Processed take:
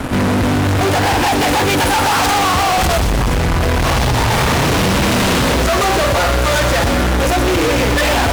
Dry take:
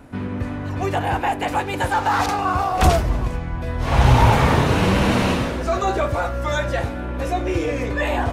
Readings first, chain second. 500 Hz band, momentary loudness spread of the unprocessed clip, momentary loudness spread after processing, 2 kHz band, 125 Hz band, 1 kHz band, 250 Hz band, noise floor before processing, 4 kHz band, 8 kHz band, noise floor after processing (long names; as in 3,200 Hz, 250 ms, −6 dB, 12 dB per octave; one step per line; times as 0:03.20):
+6.5 dB, 11 LU, 2 LU, +8.5 dB, +3.5 dB, +5.5 dB, +6.5 dB, −28 dBFS, +12.0 dB, +14.5 dB, −15 dBFS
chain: downward compressor, threshold −21 dBFS, peak gain reduction 12 dB
fuzz pedal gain 42 dB, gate −47 dBFS
on a send: delay with a high-pass on its return 122 ms, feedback 61%, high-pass 2,900 Hz, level −6 dB